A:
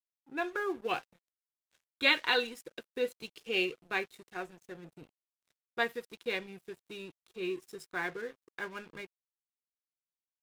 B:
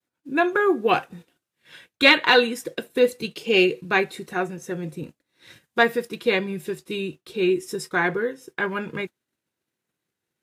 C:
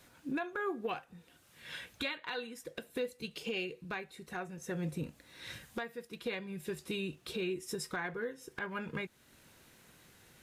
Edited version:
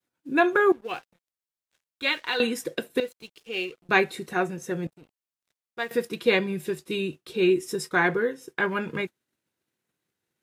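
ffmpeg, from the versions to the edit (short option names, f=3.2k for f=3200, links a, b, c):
-filter_complex "[0:a]asplit=3[a][b][c];[1:a]asplit=4[d][e][f][g];[d]atrim=end=0.722[h];[a]atrim=start=0.718:end=2.402[i];[e]atrim=start=2.398:end=3.002[j];[b]atrim=start=2.998:end=3.892[k];[f]atrim=start=3.888:end=4.872[l];[c]atrim=start=4.868:end=5.912[m];[g]atrim=start=5.908[n];[h][i]acrossfade=d=0.004:c1=hsin:c2=hsin[o];[o][j]acrossfade=d=0.004:c1=hsin:c2=hsin[p];[p][k]acrossfade=d=0.004:c1=hsin:c2=hsin[q];[q][l]acrossfade=d=0.004:c1=hsin:c2=hsin[r];[r][m]acrossfade=d=0.004:c1=hsin:c2=hsin[s];[s][n]acrossfade=d=0.004:c1=hsin:c2=hsin"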